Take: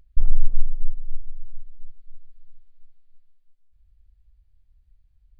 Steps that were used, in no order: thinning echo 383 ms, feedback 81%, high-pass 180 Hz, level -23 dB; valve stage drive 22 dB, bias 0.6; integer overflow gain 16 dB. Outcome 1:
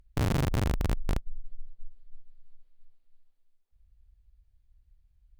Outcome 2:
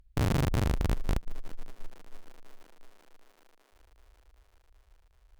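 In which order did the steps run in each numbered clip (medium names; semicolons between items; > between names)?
thinning echo > integer overflow > valve stage; integer overflow > thinning echo > valve stage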